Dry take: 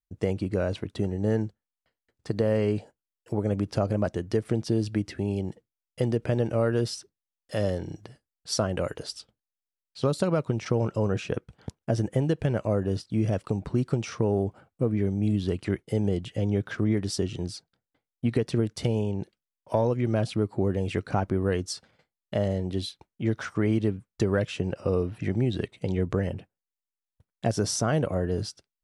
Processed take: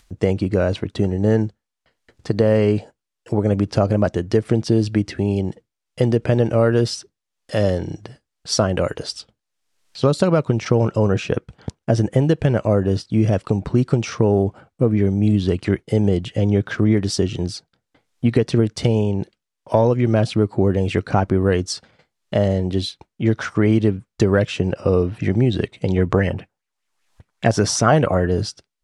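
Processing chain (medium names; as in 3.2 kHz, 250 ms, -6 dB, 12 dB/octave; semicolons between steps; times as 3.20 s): low-pass 8.6 kHz 12 dB/octave; upward compressor, threshold -47 dBFS; 25.96–28.27 s: sweeping bell 5.1 Hz 760–2500 Hz +10 dB; trim +8.5 dB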